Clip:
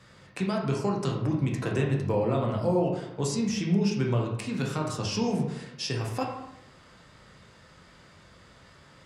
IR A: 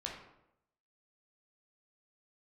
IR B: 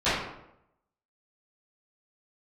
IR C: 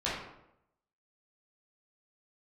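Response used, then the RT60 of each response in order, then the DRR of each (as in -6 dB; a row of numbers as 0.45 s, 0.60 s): A; 0.80 s, 0.80 s, 0.80 s; -1.5 dB, -17.5 dB, -9.0 dB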